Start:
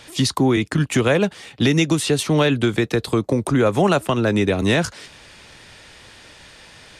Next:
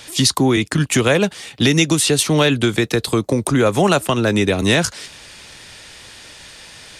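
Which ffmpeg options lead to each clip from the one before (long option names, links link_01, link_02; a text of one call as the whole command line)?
ffmpeg -i in.wav -af "highshelf=frequency=3400:gain=8.5,volume=1.5dB" out.wav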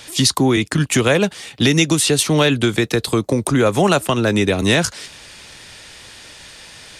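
ffmpeg -i in.wav -af anull out.wav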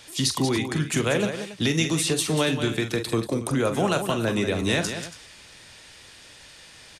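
ffmpeg -i in.wav -af "aecho=1:1:44|186|280:0.335|0.355|0.168,volume=-9dB" out.wav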